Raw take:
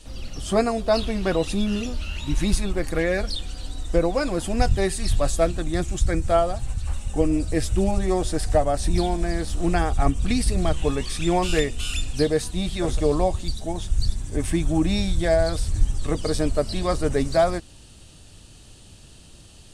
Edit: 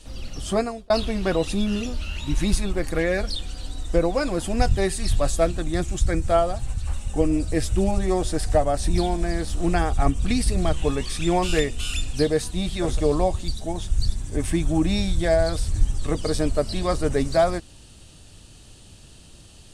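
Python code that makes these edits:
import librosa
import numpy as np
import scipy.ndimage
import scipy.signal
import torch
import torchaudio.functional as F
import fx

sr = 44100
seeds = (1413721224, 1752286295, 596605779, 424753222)

y = fx.edit(x, sr, fx.fade_out_span(start_s=0.48, length_s=0.42), tone=tone)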